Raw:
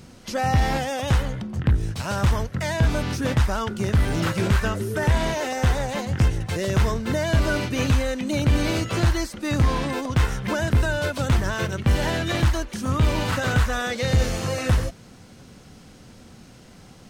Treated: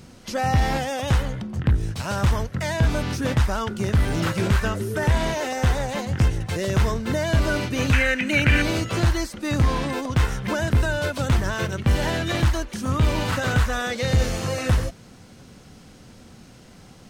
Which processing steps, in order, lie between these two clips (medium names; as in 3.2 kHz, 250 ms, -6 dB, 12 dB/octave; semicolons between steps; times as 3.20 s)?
7.93–8.62 s: high-order bell 2 kHz +14 dB 1.2 oct